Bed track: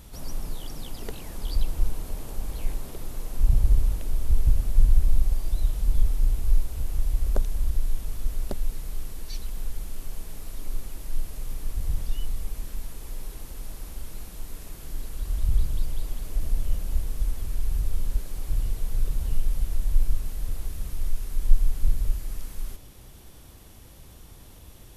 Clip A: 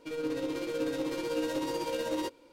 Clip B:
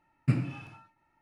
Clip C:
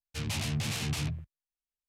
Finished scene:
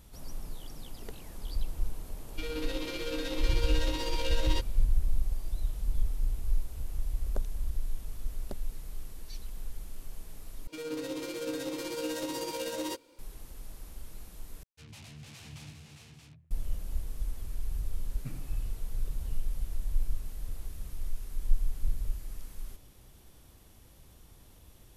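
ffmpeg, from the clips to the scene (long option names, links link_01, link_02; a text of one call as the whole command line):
ffmpeg -i bed.wav -i cue0.wav -i cue1.wav -i cue2.wav -filter_complex "[1:a]asplit=2[link_01][link_02];[0:a]volume=-8dB[link_03];[link_01]equalizer=frequency=3500:width_type=o:width=2.1:gain=12[link_04];[link_02]highshelf=frequency=4100:gain=11[link_05];[3:a]aecho=1:1:101|404|572|629:0.2|0.447|0.251|0.501[link_06];[link_03]asplit=3[link_07][link_08][link_09];[link_07]atrim=end=10.674[link_10];[link_05]atrim=end=2.52,asetpts=PTS-STARTPTS,volume=-3.5dB[link_11];[link_08]atrim=start=13.186:end=14.634[link_12];[link_06]atrim=end=1.88,asetpts=PTS-STARTPTS,volume=-16.5dB[link_13];[link_09]atrim=start=16.506[link_14];[link_04]atrim=end=2.52,asetpts=PTS-STARTPTS,volume=-5dB,afade=type=in:duration=0.004:curve=hsin,afade=type=out:start_time=2.516:duration=0.004:curve=hsin,adelay=2320[link_15];[2:a]atrim=end=1.21,asetpts=PTS-STARTPTS,volume=-16.5dB,afade=type=in:duration=0.004:curve=hsin,afade=type=out:start_time=1.206:duration=0.004:curve=hsin,adelay=17970[link_16];[link_10][link_11]acrossfade=duration=0.004:curve1=hsin:curve2=hsin[link_17];[link_17][link_12]acrossfade=duration=0.004:curve1=hsin:curve2=hsin[link_18];[link_18][link_13]acrossfade=duration=0.004:curve1=hsin:curve2=hsin[link_19];[link_19][link_14]acrossfade=duration=0.004:curve1=hsin:curve2=hsin[link_20];[link_20][link_15][link_16]amix=inputs=3:normalize=0" out.wav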